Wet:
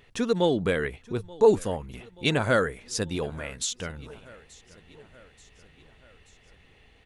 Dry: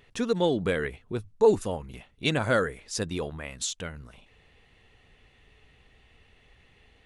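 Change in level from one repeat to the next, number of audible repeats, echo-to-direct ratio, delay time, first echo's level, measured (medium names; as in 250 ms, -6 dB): -5.0 dB, 3, -20.5 dB, 881 ms, -22.0 dB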